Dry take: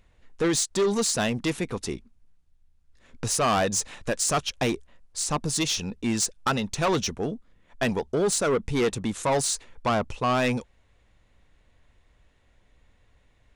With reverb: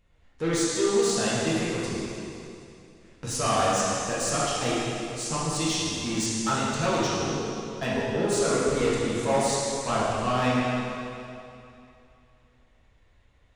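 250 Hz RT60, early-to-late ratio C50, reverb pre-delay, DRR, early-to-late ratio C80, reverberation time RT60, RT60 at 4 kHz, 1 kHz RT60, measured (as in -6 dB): 2.7 s, -3.5 dB, 4 ms, -8.5 dB, -2.0 dB, 2.7 s, 2.5 s, 2.7 s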